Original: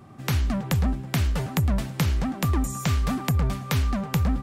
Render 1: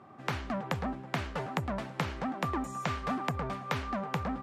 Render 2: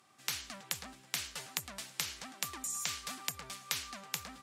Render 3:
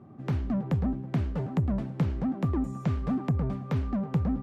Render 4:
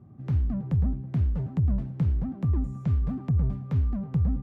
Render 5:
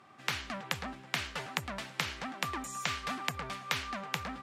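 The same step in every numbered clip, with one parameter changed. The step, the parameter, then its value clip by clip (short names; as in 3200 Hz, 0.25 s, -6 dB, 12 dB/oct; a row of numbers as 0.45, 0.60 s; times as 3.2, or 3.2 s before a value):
band-pass, frequency: 900, 7000, 270, 100, 2400 Hz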